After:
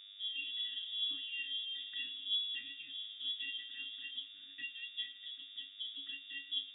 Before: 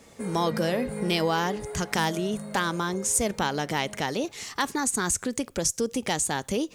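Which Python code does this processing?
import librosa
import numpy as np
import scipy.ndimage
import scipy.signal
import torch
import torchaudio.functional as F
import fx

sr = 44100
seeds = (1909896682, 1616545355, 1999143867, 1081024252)

p1 = fx.recorder_agc(x, sr, target_db=-15.0, rise_db_per_s=8.9, max_gain_db=30)
p2 = fx.air_absorb(p1, sr, metres=270.0)
p3 = fx.octave_resonator(p2, sr, note='G#', decay_s=0.23)
p4 = p3 + fx.echo_banded(p3, sr, ms=109, feedback_pct=80, hz=650.0, wet_db=-14.5, dry=0)
p5 = fx.dmg_buzz(p4, sr, base_hz=100.0, harmonics=24, level_db=-52.0, tilt_db=-8, odd_only=False)
p6 = fx.freq_invert(p5, sr, carrier_hz=3600)
y = p6 * librosa.db_to_amplitude(-3.5)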